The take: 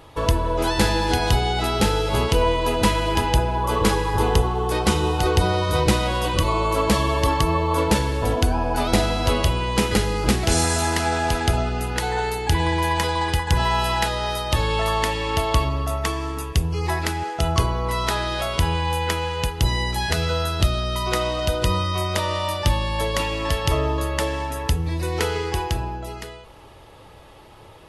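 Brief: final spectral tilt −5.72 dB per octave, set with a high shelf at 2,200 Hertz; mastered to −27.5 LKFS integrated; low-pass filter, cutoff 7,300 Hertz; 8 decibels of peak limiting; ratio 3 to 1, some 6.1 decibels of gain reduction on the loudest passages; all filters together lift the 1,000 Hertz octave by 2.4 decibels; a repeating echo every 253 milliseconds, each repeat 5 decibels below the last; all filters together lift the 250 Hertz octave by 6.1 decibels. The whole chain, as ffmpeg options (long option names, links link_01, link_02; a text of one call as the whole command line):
ffmpeg -i in.wav -af "lowpass=7300,equalizer=frequency=250:width_type=o:gain=8.5,equalizer=frequency=1000:width_type=o:gain=4,highshelf=frequency=2200:gain=-9,acompressor=threshold=-18dB:ratio=3,alimiter=limit=-15dB:level=0:latency=1,aecho=1:1:253|506|759|1012|1265|1518|1771:0.562|0.315|0.176|0.0988|0.0553|0.031|0.0173,volume=-4.5dB" out.wav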